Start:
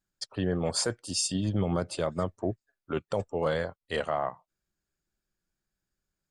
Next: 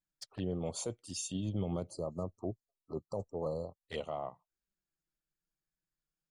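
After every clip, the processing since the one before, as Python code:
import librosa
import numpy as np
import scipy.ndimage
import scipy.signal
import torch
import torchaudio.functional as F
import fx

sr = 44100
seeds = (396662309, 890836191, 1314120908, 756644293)

y = fx.env_flanger(x, sr, rest_ms=6.5, full_db=-28.5)
y = fx.spec_erase(y, sr, start_s=1.9, length_s=1.96, low_hz=1300.0, high_hz=4000.0)
y = F.gain(torch.from_numpy(y), -7.0).numpy()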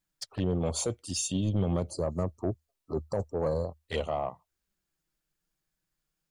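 y = fx.peak_eq(x, sr, hz=77.0, db=10.0, octaves=0.31)
y = 10.0 ** (-28.0 / 20.0) * np.tanh(y / 10.0 ** (-28.0 / 20.0))
y = F.gain(torch.from_numpy(y), 8.5).numpy()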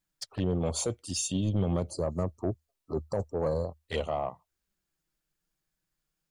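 y = x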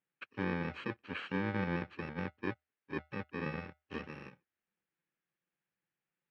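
y = fx.bit_reversed(x, sr, seeds[0], block=64)
y = fx.cabinet(y, sr, low_hz=190.0, low_slope=12, high_hz=2700.0, hz=(640.0, 1000.0, 1700.0), db=(-4, -4, 5))
y = F.gain(torch.from_numpy(y), -1.0).numpy()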